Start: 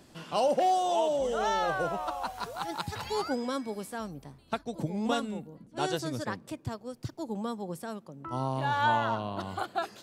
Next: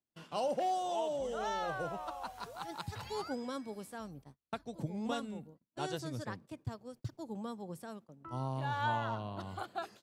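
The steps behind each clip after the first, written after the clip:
noise gate −45 dBFS, range −33 dB
dynamic equaliser 110 Hz, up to +6 dB, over −49 dBFS, Q 1.4
level −8 dB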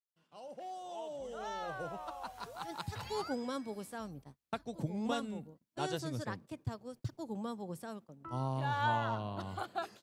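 fade in at the beginning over 3.11 s
level +1.5 dB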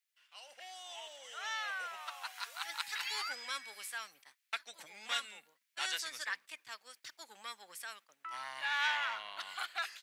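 soft clipping −29.5 dBFS, distortion −15 dB
high-pass with resonance 2,000 Hz, resonance Q 2
level +8 dB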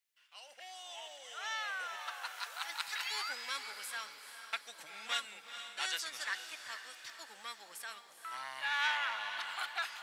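feedback delay with all-pass diffusion 450 ms, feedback 47%, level −9 dB

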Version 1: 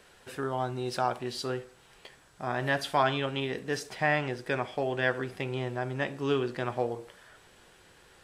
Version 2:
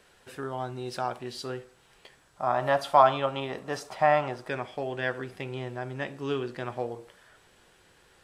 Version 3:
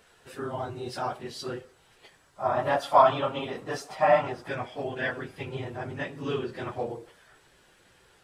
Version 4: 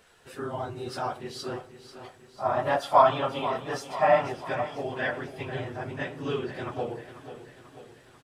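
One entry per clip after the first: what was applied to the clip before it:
gain on a spectral selection 0:02.36–0:04.49, 520–1,400 Hz +10 dB; level −2.5 dB
random phases in long frames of 50 ms
repeating echo 491 ms, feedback 56%, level −12.5 dB

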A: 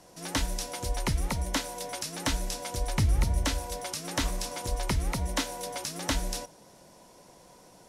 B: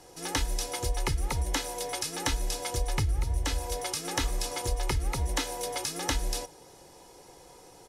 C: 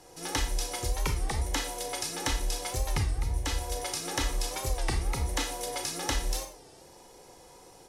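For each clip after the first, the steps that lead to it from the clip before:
comb filter 2.4 ms, depth 61%; downward compressor 6 to 1, threshold −26 dBFS, peak gain reduction 9.5 dB; level +1.5 dB
four-comb reverb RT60 0.4 s, combs from 28 ms, DRR 5 dB; wow of a warped record 33 1/3 rpm, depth 160 cents; level −1.5 dB

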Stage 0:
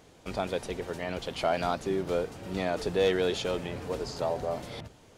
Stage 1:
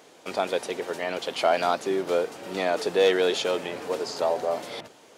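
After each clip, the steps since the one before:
high-pass filter 330 Hz 12 dB per octave
level +6 dB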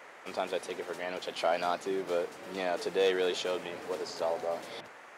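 noise in a band 430–2,200 Hz −45 dBFS
level −7 dB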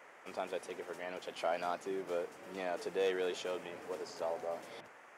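parametric band 4,000 Hz −6.5 dB 0.52 octaves
level −6 dB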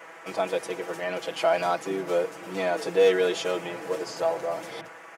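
comb filter 6.1 ms, depth 97%
level +9 dB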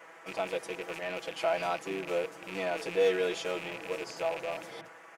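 loose part that buzzes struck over −45 dBFS, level −23 dBFS
level −6.5 dB

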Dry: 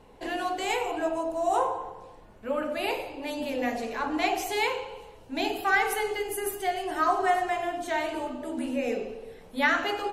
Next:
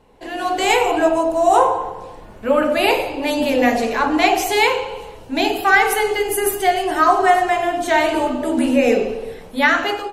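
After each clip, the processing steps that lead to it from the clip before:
automatic gain control gain up to 15 dB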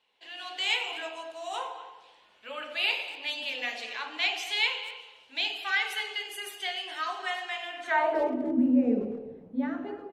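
band-pass filter sweep 3,200 Hz → 220 Hz, 0:07.67–0:08.50
far-end echo of a speakerphone 240 ms, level −14 dB
on a send at −20 dB: convolution reverb RT60 1.4 s, pre-delay 35 ms
on the sum: level −3 dB

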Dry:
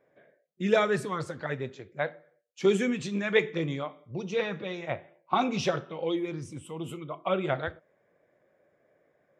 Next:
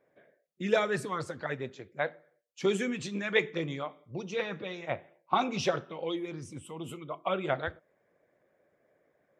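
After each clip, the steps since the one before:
harmonic and percussive parts rebalanced harmonic −5 dB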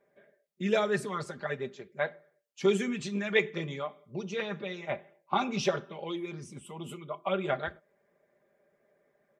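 comb filter 5 ms
level −1.5 dB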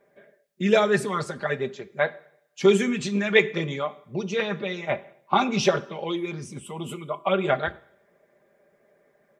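coupled-rooms reverb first 0.69 s, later 2.2 s, from −26 dB, DRR 18 dB
level +7.5 dB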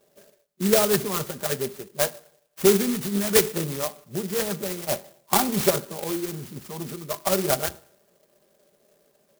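converter with an unsteady clock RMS 0.14 ms

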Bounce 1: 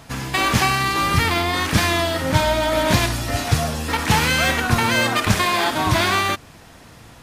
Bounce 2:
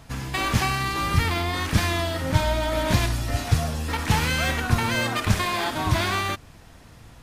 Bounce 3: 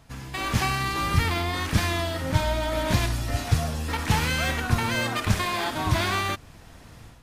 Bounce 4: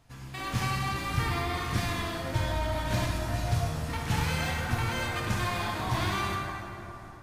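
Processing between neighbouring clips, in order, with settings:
low-shelf EQ 91 Hz +11.5 dB; level −6.5 dB
automatic gain control gain up to 9 dB; level −7 dB
dense smooth reverb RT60 3.4 s, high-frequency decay 0.45×, DRR −1 dB; level −8.5 dB

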